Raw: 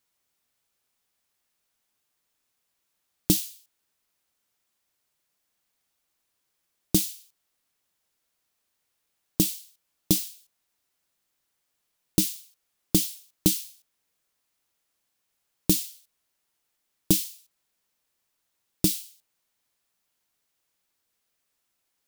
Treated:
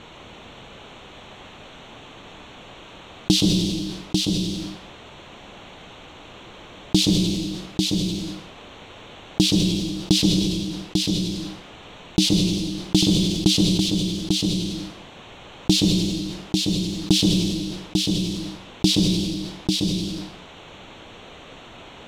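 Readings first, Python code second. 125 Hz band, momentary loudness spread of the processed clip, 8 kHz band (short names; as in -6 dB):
+12.5 dB, 16 LU, +3.0 dB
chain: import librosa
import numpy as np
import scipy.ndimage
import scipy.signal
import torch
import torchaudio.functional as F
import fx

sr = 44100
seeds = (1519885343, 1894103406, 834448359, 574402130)

p1 = fx.wiener(x, sr, points=9)
p2 = fx.lowpass_res(p1, sr, hz=3600.0, q=1.7)
p3 = fx.rev_plate(p2, sr, seeds[0], rt60_s=0.61, hf_ratio=0.95, predelay_ms=115, drr_db=7.0)
p4 = 10.0 ** (-12.0 / 20.0) * np.tanh(p3 / 10.0 ** (-12.0 / 20.0))
p5 = fx.peak_eq(p4, sr, hz=1800.0, db=-10.5, octaves=1.4)
p6 = p5 + fx.echo_single(p5, sr, ms=845, db=-13.0, dry=0)
p7 = fx.env_flatten(p6, sr, amount_pct=70)
y = p7 * 10.0 ** (6.5 / 20.0)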